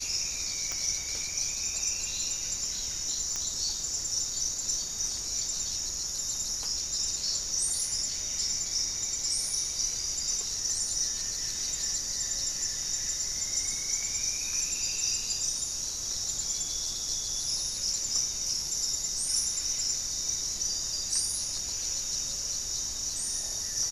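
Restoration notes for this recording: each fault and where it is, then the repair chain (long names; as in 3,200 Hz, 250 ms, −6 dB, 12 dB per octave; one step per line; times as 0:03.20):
0:00.72: click −17 dBFS
0:03.36: click −18 dBFS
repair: click removal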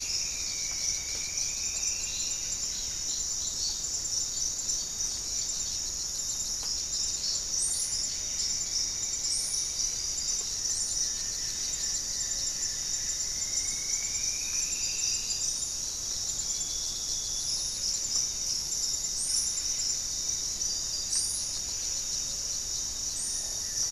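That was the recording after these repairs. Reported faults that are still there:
none of them is left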